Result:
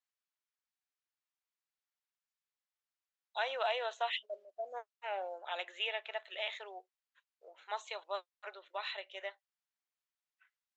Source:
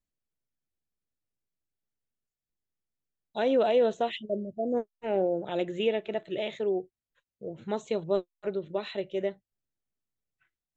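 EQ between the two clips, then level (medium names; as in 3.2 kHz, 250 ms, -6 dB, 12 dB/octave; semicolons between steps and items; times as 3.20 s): inverse Chebyshev high-pass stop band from 190 Hz, stop band 70 dB; distance through air 75 m; +2.0 dB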